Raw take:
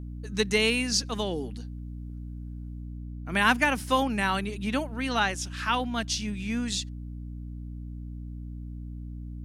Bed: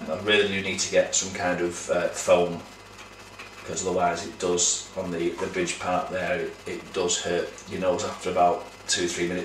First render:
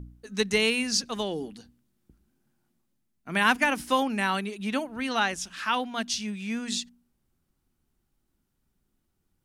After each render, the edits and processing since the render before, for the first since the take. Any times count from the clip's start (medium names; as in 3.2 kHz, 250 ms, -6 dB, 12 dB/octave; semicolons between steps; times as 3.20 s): de-hum 60 Hz, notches 5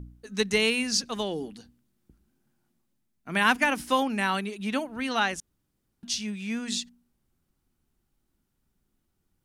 5.40–6.03 s: room tone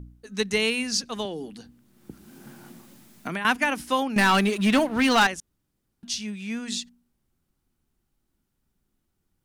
1.25–3.45 s: three bands compressed up and down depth 100%; 4.16–5.27 s: waveshaping leveller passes 3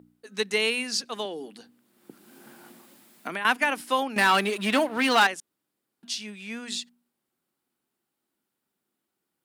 high-pass 320 Hz 12 dB/octave; peaking EQ 6.1 kHz -5 dB 0.38 oct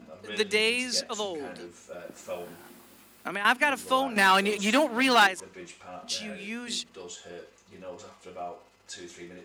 add bed -17.5 dB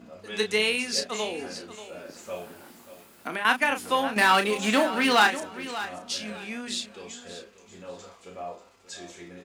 doubling 33 ms -7.5 dB; feedback delay 586 ms, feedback 23%, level -13.5 dB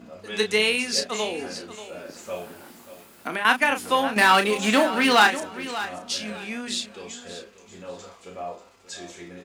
trim +3 dB